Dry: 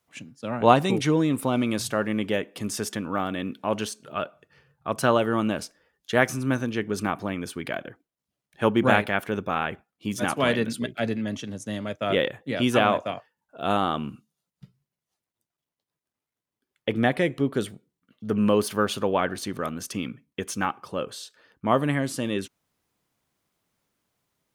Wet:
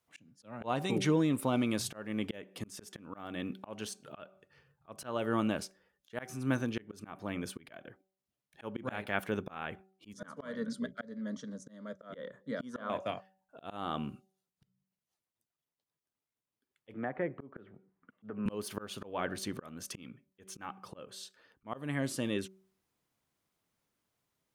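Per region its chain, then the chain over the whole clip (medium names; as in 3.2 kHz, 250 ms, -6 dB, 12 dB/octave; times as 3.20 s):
10.13–12.90 s: low-pass 6 kHz + static phaser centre 520 Hz, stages 8
16.94–18.46 s: low-pass 1.7 kHz 24 dB/octave + bass shelf 320 Hz -8.5 dB + three bands compressed up and down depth 100%
whole clip: de-hum 190.4 Hz, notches 4; slow attack 311 ms; trim -6 dB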